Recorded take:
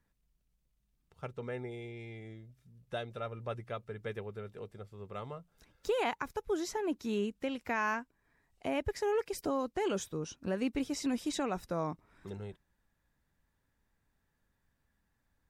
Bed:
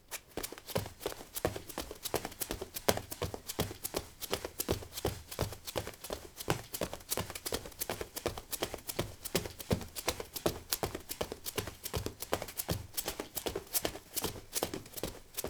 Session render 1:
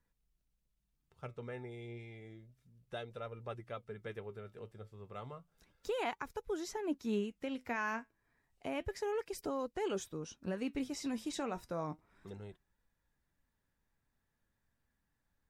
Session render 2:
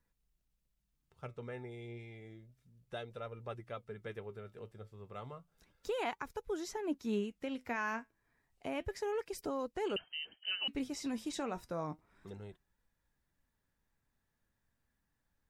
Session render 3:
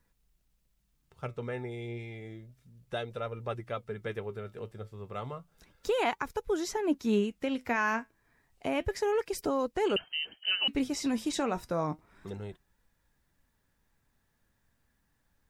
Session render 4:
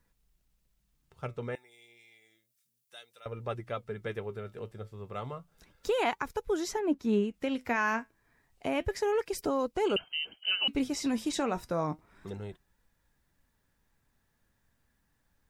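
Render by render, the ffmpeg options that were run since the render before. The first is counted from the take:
-af "flanger=delay=2:depth=7.1:regen=73:speed=0.31:shape=sinusoidal"
-filter_complex "[0:a]asettb=1/sr,asplit=3[a][b][c];[a]atrim=end=9.964[d];[b]atrim=start=9.96:end=10.68,asetpts=PTS-STARTPTS,afade=t=in:d=0.004:c=qsin,afade=t=out:st=0.716:d=0.004:c=qsin,lowpass=f=2.7k:t=q:w=0.5098,lowpass=f=2.7k:t=q:w=0.6013,lowpass=f=2.7k:t=q:w=0.9,lowpass=f=2.7k:t=q:w=2.563,afreqshift=-3200[e];[c]atrim=start=10.676[f];[d][e]acrossfade=d=0.004:c1=hsin:c2=qsin[g];[g][f]acrossfade=d=0.004:c1=qsin:c2=hsin"
-af "volume=8dB"
-filter_complex "[0:a]asettb=1/sr,asplit=3[a][b][c];[a]atrim=end=1.554[d];[b]atrim=start=1.55:end=3.26,asetpts=PTS-STARTPTS,afade=t=in:d=0.004:c=qsin,afade=t=out:st=1.706:d=0.004:c=qsin,aderivative[e];[c]atrim=start=3.256[f];[d][e]acrossfade=d=0.004:c1=hsin:c2=qsin[g];[g][f]acrossfade=d=0.004:c1=qsin:c2=hsin,asettb=1/sr,asplit=3[h][i][j];[h]atrim=end=6.794[k];[i]atrim=start=6.79:end=7.34,asetpts=PTS-STARTPTS,afade=t=in:d=0.004:c=qsin,afade=t=out:st=0.546:d=0.004:c=qsin,highshelf=f=2.3k:g=-8[l];[j]atrim=start=7.336[m];[k][l]acrossfade=d=0.004:c1=hsin:c2=qsin[n];[n][m]acrossfade=d=0.004:c1=qsin:c2=hsin,asettb=1/sr,asplit=3[o][p][q];[o]atrim=end=9.714[r];[p]atrim=start=9.71:end=10.8,asetpts=PTS-STARTPTS,afade=t=in:d=0.004:c=qsin,afade=t=out:st=1.086:d=0.004:c=qsin,bandreject=f=1.8k:w=6.1[s];[q]atrim=start=10.796[t];[r][s]acrossfade=d=0.004:c1=hsin:c2=qsin[u];[u][t]acrossfade=d=0.004:c1=qsin:c2=hsin"

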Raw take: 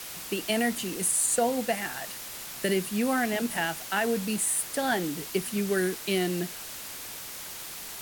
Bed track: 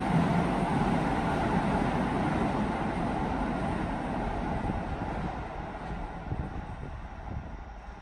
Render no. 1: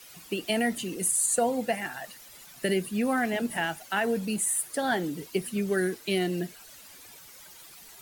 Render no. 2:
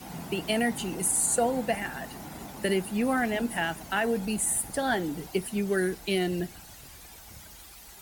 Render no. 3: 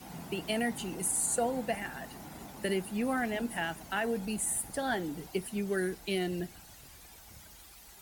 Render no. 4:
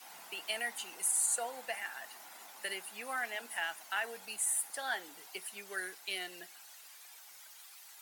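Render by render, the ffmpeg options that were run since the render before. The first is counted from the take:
-af "afftdn=nr=13:nf=-40"
-filter_complex "[1:a]volume=-14dB[a];[0:a][a]amix=inputs=2:normalize=0"
-af "volume=-5dB"
-af "highpass=1k"

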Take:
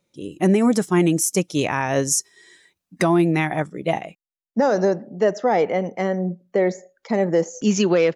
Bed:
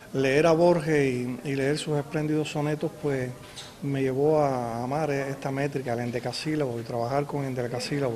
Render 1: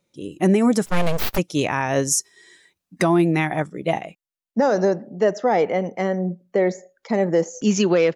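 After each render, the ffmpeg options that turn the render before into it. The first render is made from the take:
-filter_complex "[0:a]asplit=3[a][b][c];[a]afade=t=out:st=0.85:d=0.02[d];[b]aeval=exprs='abs(val(0))':c=same,afade=t=in:st=0.85:d=0.02,afade=t=out:st=1.37:d=0.02[e];[c]afade=t=in:st=1.37:d=0.02[f];[d][e][f]amix=inputs=3:normalize=0"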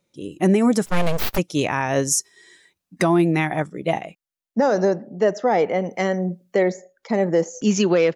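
-filter_complex "[0:a]asettb=1/sr,asplit=3[a][b][c];[a]atrim=end=5.904[d];[b]atrim=start=5.9:end=6.63,asetpts=PTS-STARTPTS,afade=t=in:d=0.004:c=qsin,afade=t=out:st=0.726:d=0.004:c=qsin,highshelf=f=2.1k:g=9.5[e];[c]atrim=start=6.626[f];[d][e]acrossfade=d=0.004:c1=hsin:c2=qsin[g];[g][f]acrossfade=d=0.004:c1=qsin:c2=hsin"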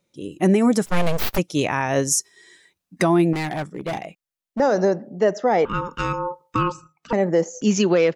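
-filter_complex "[0:a]asettb=1/sr,asplit=3[a][b][c];[a]atrim=end=3.334[d];[b]atrim=start=3.33:end=4.6,asetpts=PTS-STARTPTS,afade=t=in:d=0.004:c=qsin,afade=t=out:st=1.266:d=0.004:c=qsin,volume=23dB,asoftclip=hard,volume=-23dB[e];[c]atrim=start=4.596[f];[d][e]acrossfade=d=0.004:c1=hsin:c2=qsin[g];[g][f]acrossfade=d=0.004:c1=qsin:c2=hsin,asettb=1/sr,asplit=3[h][i][j];[h]atrim=end=5.654[k];[i]atrim=start=5.65:end=7.13,asetpts=PTS-STARTPTS,afade=t=in:d=0.004:c=qsin,afade=t=out:st=1.476:d=0.004:c=qsin,aeval=exprs='val(0)*sin(2*PI*710*n/s)':c=same[l];[j]atrim=start=7.126[m];[k][l]acrossfade=d=0.004:c1=hsin:c2=qsin[n];[n][m]acrossfade=d=0.004:c1=qsin:c2=hsin"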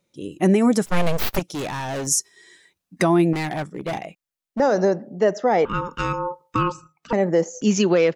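-filter_complex "[0:a]asettb=1/sr,asplit=3[a][b][c];[a]atrim=end=1.394[d];[b]atrim=start=1.39:end=2.07,asetpts=PTS-STARTPTS,afade=t=in:d=0.004:c=qsin,afade=t=out:st=0.676:d=0.004:c=qsin,asoftclip=type=hard:threshold=-25.5dB[e];[c]atrim=start=2.066[f];[d][e]acrossfade=d=0.004:c1=hsin:c2=qsin[g];[g][f]acrossfade=d=0.004:c1=qsin:c2=hsin"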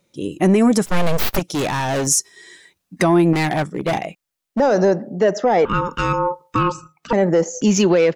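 -af "acontrast=80,alimiter=limit=-8dB:level=0:latency=1:release=104"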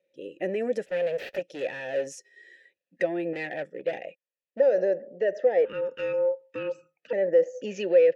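-filter_complex "[0:a]asplit=3[a][b][c];[a]bandpass=f=530:t=q:w=8,volume=0dB[d];[b]bandpass=f=1.84k:t=q:w=8,volume=-6dB[e];[c]bandpass=f=2.48k:t=q:w=8,volume=-9dB[f];[d][e][f]amix=inputs=3:normalize=0"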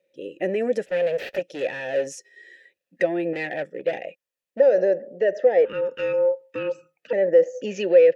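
-af "volume=4.5dB"

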